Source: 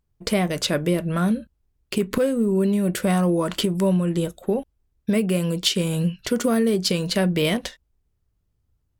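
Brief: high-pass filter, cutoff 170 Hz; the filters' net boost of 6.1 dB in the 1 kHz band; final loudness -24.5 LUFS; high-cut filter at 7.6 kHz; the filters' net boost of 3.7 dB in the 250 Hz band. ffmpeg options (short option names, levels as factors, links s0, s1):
-af "highpass=170,lowpass=7600,equalizer=f=250:t=o:g=7,equalizer=f=1000:t=o:g=8,volume=0.562"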